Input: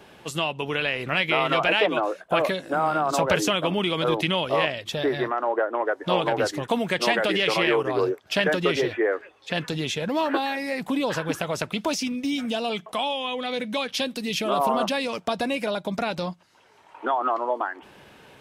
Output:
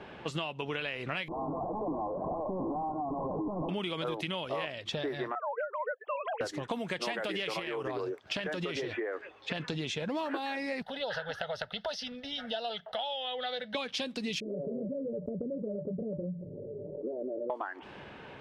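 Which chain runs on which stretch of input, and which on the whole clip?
0:01.28–0:03.69: sign of each sample alone + Chebyshev low-pass with heavy ripple 1,100 Hz, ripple 6 dB
0:05.35–0:06.41: three sine waves on the formant tracks + high-pass filter 660 Hz + downward expander −35 dBFS
0:07.59–0:09.60: high-shelf EQ 9,800 Hz +11 dB + downward compressor 5 to 1, threshold −24 dBFS
0:10.82–0:13.75: parametric band 180 Hz −10 dB 2.3 octaves + phaser with its sweep stopped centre 1,600 Hz, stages 8
0:14.40–0:17.50: Chebyshev low-pass with heavy ripple 600 Hz, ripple 9 dB + flanger 1.1 Hz, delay 2.8 ms, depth 6.4 ms, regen −39% + envelope flattener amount 70%
whole clip: low-pass that shuts in the quiet parts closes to 2,700 Hz, open at −18.5 dBFS; downward compressor 6 to 1, threshold −35 dBFS; level +2.5 dB

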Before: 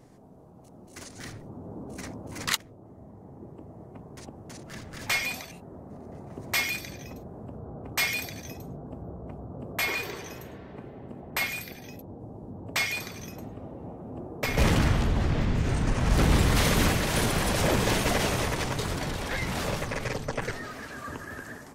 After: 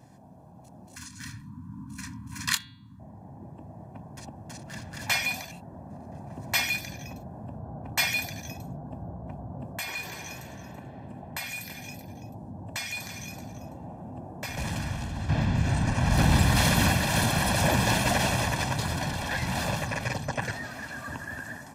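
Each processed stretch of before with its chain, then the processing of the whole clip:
0:00.96–0:03.00: Chebyshev band-stop filter 290–960 Hz, order 5 + double-tracking delay 25 ms −11 dB + hum removal 177.3 Hz, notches 26
0:09.65–0:15.29: parametric band 8,000 Hz +5 dB 1.3 octaves + downward compressor 2 to 1, threshold −38 dBFS + single-tap delay 332 ms −12 dB
whole clip: high-pass filter 74 Hz; comb filter 1.2 ms, depth 66%

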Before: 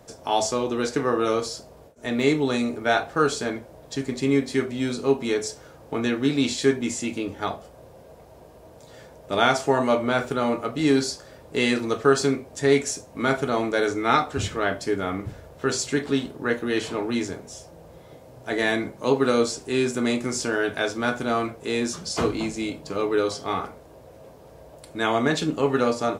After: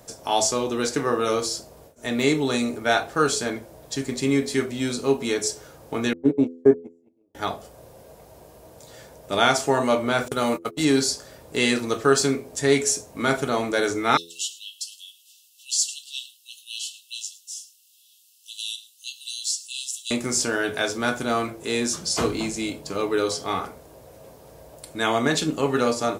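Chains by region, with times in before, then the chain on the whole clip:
0:06.13–0:07.35: noise gate −22 dBFS, range −42 dB + drawn EQ curve 140 Hz 0 dB, 650 Hz +8 dB, 3,900 Hz −28 dB, 5,800 Hz −22 dB
0:10.28–0:10.85: high-shelf EQ 4,900 Hz +8.5 dB + noise gate −28 dBFS, range −33 dB
0:14.17–0:20.11: linear-phase brick-wall high-pass 2,600 Hz + single-tap delay 107 ms −19 dB
whole clip: high-shelf EQ 5,400 Hz +10.5 dB; hum removal 84.56 Hz, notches 6

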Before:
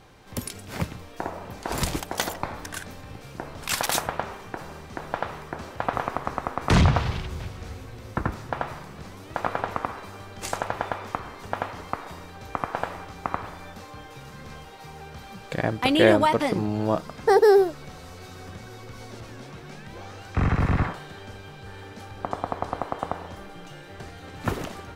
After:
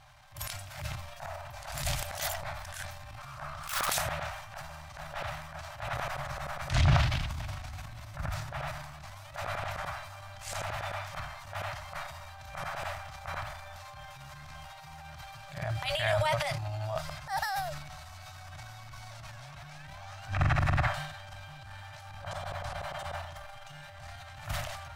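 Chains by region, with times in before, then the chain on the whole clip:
0:03.18–0:03.90: phase distortion by the signal itself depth 0.18 ms + parametric band 1,200 Hz +15 dB 0.57 octaves
0:20.27–0:20.83: notch filter 2,100 Hz, Q 13 + multiband upward and downward compressor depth 100%
whole clip: brick-wall band-stop 160–560 Hz; dynamic equaliser 990 Hz, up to −7 dB, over −43 dBFS, Q 2; transient designer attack −12 dB, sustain +9 dB; level −3.5 dB

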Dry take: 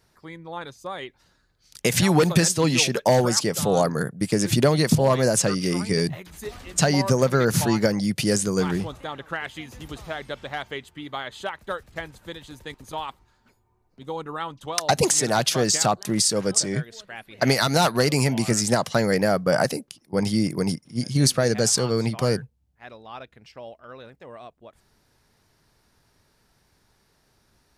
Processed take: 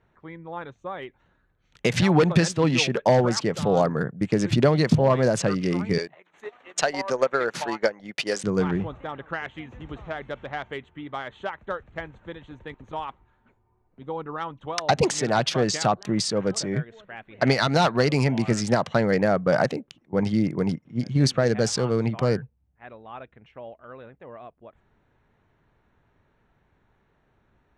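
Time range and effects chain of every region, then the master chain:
0:05.98–0:08.44: high-pass filter 510 Hz + transient designer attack +4 dB, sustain −11 dB
whole clip: adaptive Wiener filter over 9 samples; low-pass filter 4,500 Hz 12 dB per octave

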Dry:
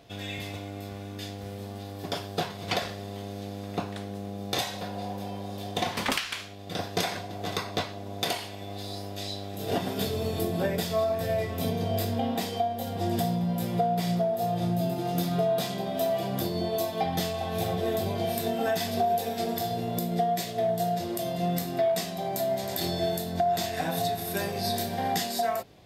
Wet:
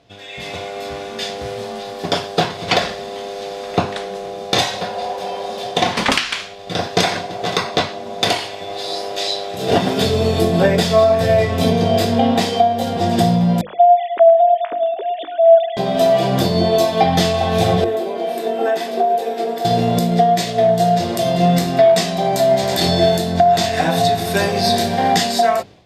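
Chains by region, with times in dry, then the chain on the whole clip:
0:13.61–0:15.77: three sine waves on the formant tracks + high-pass filter 290 Hz + repeating echo 107 ms, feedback 54%, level −16.5 dB
0:17.84–0:19.65: four-pole ladder high-pass 280 Hz, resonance 40% + parametric band 5,500 Hz −7 dB 1.6 octaves
whole clip: low-pass filter 7,500 Hz 12 dB per octave; mains-hum notches 50/100/150/200/250/300/350 Hz; automatic gain control gain up to 16 dB

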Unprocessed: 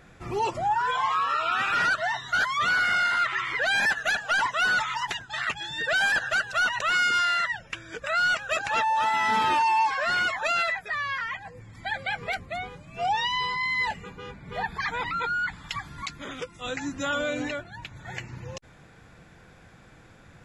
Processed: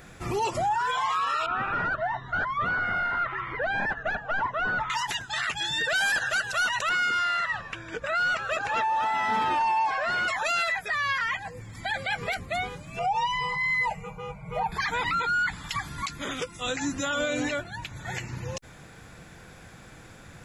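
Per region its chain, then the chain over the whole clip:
0:01.46–0:04.90: Bessel low-pass filter 850 Hz + low-shelf EQ 69 Hz +10 dB + one half of a high-frequency compander encoder only
0:06.89–0:10.28: low-pass filter 1,700 Hz 6 dB per octave + echo with shifted repeats 154 ms, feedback 41%, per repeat −120 Hz, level −16.5 dB
0:12.99–0:14.72: high shelf with overshoot 2,800 Hz −9 dB, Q 3 + phaser with its sweep stopped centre 730 Hz, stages 4 + comb filter 6.4 ms, depth 70%
whole clip: high-shelf EQ 6,600 Hz +11 dB; brickwall limiter −24 dBFS; level +4 dB

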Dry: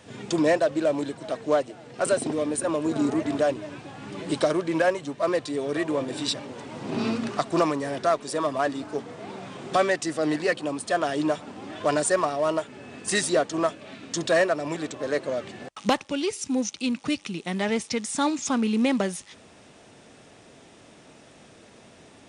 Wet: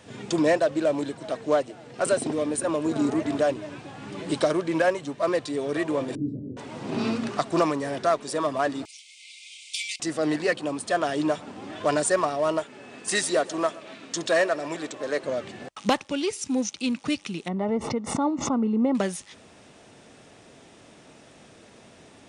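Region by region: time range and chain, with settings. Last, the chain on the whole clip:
0:06.15–0:06.57: inverse Chebyshev low-pass filter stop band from 980 Hz, stop band 50 dB + low-shelf EQ 280 Hz +8 dB + double-tracking delay 34 ms −9 dB
0:08.85–0:10.00: Chebyshev high-pass filter 2,100 Hz, order 10 + high-shelf EQ 3,100 Hz +10 dB
0:12.63–0:15.24: high-pass filter 290 Hz 6 dB per octave + repeating echo 125 ms, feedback 51%, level −20.5 dB
0:17.48–0:18.95: Savitzky-Golay smoothing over 65 samples + background raised ahead of every attack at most 77 dB per second
whole clip: no processing

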